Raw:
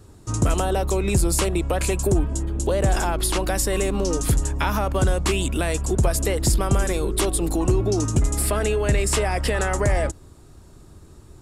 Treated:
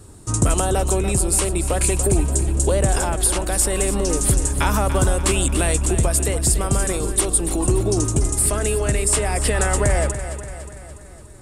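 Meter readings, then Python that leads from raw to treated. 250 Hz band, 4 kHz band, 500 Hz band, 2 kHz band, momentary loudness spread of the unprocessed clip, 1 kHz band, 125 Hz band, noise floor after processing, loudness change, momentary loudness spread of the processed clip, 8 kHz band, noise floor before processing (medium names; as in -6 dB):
+1.0 dB, +1.0 dB, +1.0 dB, +1.0 dB, 3 LU, +1.5 dB, +2.0 dB, -40 dBFS, +3.0 dB, 3 LU, +8.0 dB, -47 dBFS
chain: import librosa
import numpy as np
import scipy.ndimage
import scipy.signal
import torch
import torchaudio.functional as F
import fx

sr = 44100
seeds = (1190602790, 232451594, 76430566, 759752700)

p1 = fx.peak_eq(x, sr, hz=8900.0, db=12.5, octaves=0.42)
p2 = fx.rider(p1, sr, range_db=4, speed_s=0.5)
y = p2 + fx.echo_feedback(p2, sr, ms=289, feedback_pct=55, wet_db=-11.0, dry=0)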